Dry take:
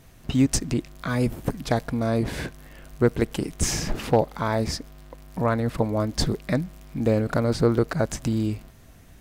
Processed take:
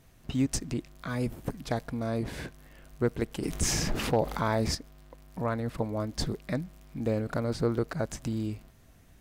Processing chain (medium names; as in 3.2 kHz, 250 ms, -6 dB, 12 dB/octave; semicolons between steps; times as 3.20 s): 3.43–4.75 s: level flattener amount 50%; trim -7.5 dB